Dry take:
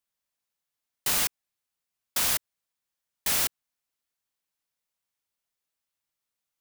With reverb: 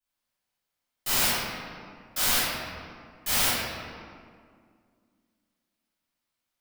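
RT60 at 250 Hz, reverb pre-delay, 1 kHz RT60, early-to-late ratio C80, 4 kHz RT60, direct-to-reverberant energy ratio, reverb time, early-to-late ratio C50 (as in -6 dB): 2.8 s, 3 ms, 2.0 s, -1.5 dB, 1.2 s, -14.5 dB, 2.1 s, -4.5 dB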